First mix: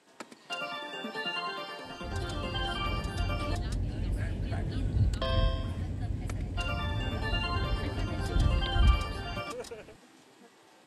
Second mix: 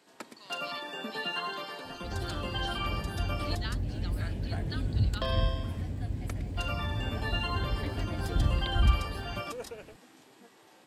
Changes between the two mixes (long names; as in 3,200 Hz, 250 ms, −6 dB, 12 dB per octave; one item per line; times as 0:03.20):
speech +10.0 dB
master: remove low-pass filter 11,000 Hz 24 dB per octave